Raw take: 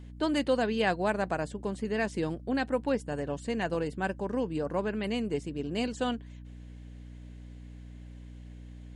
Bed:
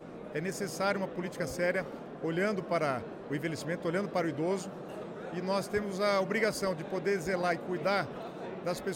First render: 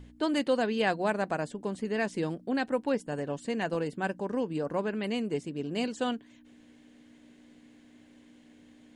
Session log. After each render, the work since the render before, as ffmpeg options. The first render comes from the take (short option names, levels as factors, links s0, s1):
-af "bandreject=f=60:t=h:w=4,bandreject=f=120:t=h:w=4,bandreject=f=180:t=h:w=4"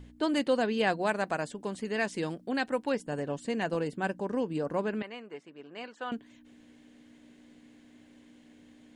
-filter_complex "[0:a]asettb=1/sr,asplit=3[s0][s1][s2];[s0]atrim=end=1.034[s3];[s1]atrim=start=1.03:end=2.99,asetpts=PTS-STARTPTS,afade=t=in:d=0.004:c=qsin,afade=t=out:st=1.956:d=0.004:c=qsin,tiltshelf=f=820:g=-3[s4];[s2]atrim=start=2.986[s5];[s3][s4]acrossfade=d=0.004:c1=hsin:c2=qsin[s6];[s6][s5]acrossfade=d=0.004:c1=qsin:c2=hsin,asettb=1/sr,asplit=3[s7][s8][s9];[s7]atrim=end=5.024[s10];[s8]atrim=start=5.02:end=6.12,asetpts=PTS-STARTPTS,afade=t=in:d=0.004:c=qsin,afade=t=out:st=1.096:d=0.004:c=qsin,bandpass=f=1300:t=q:w=1.3[s11];[s9]atrim=start=6.116[s12];[s10][s11]acrossfade=d=0.004:c1=hsin:c2=qsin[s13];[s13][s12]acrossfade=d=0.004:c1=qsin:c2=hsin"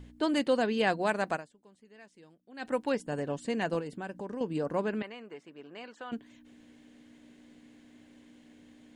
-filter_complex "[0:a]asettb=1/sr,asplit=3[s0][s1][s2];[s0]atrim=end=3.794[s3];[s1]atrim=start=3.79:end=4.41,asetpts=PTS-STARTPTS,afade=t=in:d=0.004:c=qsin,afade=t=out:st=0.616:d=0.004:c=qsin,acompressor=threshold=0.0158:ratio=3:attack=3.2:release=140:knee=1:detection=peak[s4];[s2]atrim=start=4.406[s5];[s3][s4]acrossfade=d=0.004:c1=hsin:c2=qsin[s6];[s6][s5]acrossfade=d=0.004:c1=qsin:c2=hsin,asettb=1/sr,asplit=3[s7][s8][s9];[s7]atrim=end=5.114[s10];[s8]atrim=start=5.11:end=6.13,asetpts=PTS-STARTPTS,afade=t=in:d=0.004:c=qsin,afade=t=out:st=1.016:d=0.004:c=qsin,acompressor=threshold=0.00891:ratio=2:attack=3.2:release=140:knee=1:detection=peak[s11];[s9]atrim=start=6.126[s12];[s10][s11]acrossfade=d=0.004:c1=hsin:c2=qsin[s13];[s13][s12]acrossfade=d=0.004:c1=qsin:c2=hsin,asplit=3[s14][s15][s16];[s14]atrim=end=1.81,asetpts=PTS-STARTPTS,afade=t=out:st=1.35:d=0.46:c=exp:silence=0.0668344[s17];[s15]atrim=start=1.81:end=2.2,asetpts=PTS-STARTPTS,volume=0.0668[s18];[s16]atrim=start=2.2,asetpts=PTS-STARTPTS,afade=t=in:d=0.46:c=exp:silence=0.0668344[s19];[s17][s18][s19]concat=n=3:v=0:a=1"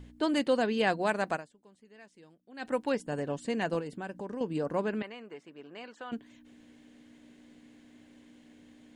-af anull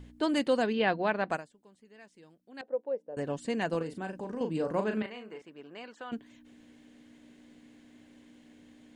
-filter_complex "[0:a]asplit=3[s0][s1][s2];[s0]afade=t=out:st=0.72:d=0.02[s3];[s1]lowpass=f=4000:w=0.5412,lowpass=f=4000:w=1.3066,afade=t=in:st=0.72:d=0.02,afade=t=out:st=1.3:d=0.02[s4];[s2]afade=t=in:st=1.3:d=0.02[s5];[s3][s4][s5]amix=inputs=3:normalize=0,asettb=1/sr,asplit=3[s6][s7][s8];[s6]atrim=end=2.614[s9];[s7]atrim=start=2.61:end=3.17,asetpts=PTS-STARTPTS,afade=t=in:d=0.004:c=qsin,afade=t=out:st=0.556:d=0.004:c=qsin,bandpass=f=520:t=q:w=4.8[s10];[s8]atrim=start=3.166[s11];[s9][s10]acrossfade=d=0.004:c1=hsin:c2=qsin[s12];[s12][s11]acrossfade=d=0.004:c1=qsin:c2=hsin,asettb=1/sr,asplit=3[s13][s14][s15];[s13]atrim=end=3.774[s16];[s14]atrim=start=3.77:end=5.42,asetpts=PTS-STARTPTS,afade=t=in:d=0.004:c=qsin,afade=t=out:st=1.646:d=0.004:c=qsin,asplit=2[s17][s18];[s18]adelay=37,volume=0.473[s19];[s17][s19]amix=inputs=2:normalize=0,atrim=end_sample=72765[s20];[s15]atrim=start=5.416[s21];[s16][s20]acrossfade=d=0.004:c1=hsin:c2=qsin[s22];[s22][s21]acrossfade=d=0.004:c1=qsin:c2=hsin"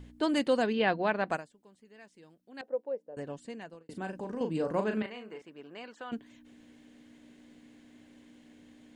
-filter_complex "[0:a]asplit=2[s0][s1];[s0]atrim=end=3.89,asetpts=PTS-STARTPTS,afade=t=out:st=2.66:d=1.23[s2];[s1]atrim=start=3.89,asetpts=PTS-STARTPTS,afade=t=in:d=0.004:c=hsin[s3];[s2][s3]concat=n=2:v=0:a=1"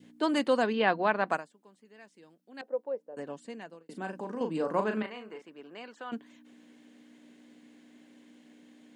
-af "highpass=f=170:w=0.5412,highpass=f=170:w=1.3066,adynamicequalizer=threshold=0.00501:dfrequency=1100:dqfactor=1.6:tfrequency=1100:tqfactor=1.6:attack=5:release=100:ratio=0.375:range=3:mode=boostabove:tftype=bell"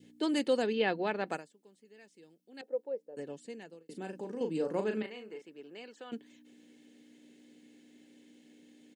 -af "equalizer=f=1100:w=1.1:g=-13,aecho=1:1:2.3:0.31"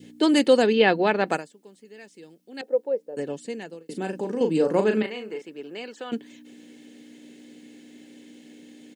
-af "volume=3.76"